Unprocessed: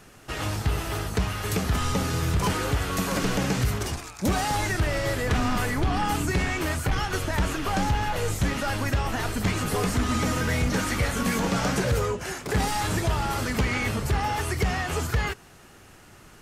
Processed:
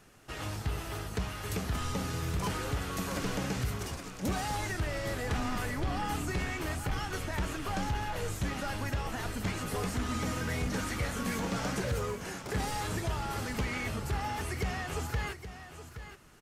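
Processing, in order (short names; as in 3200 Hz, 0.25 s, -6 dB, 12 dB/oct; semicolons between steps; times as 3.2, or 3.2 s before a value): on a send: echo 0.822 s -11.5 dB; 11.23–12.11 on the sum: crackle 97/s -36 dBFS; gain -8.5 dB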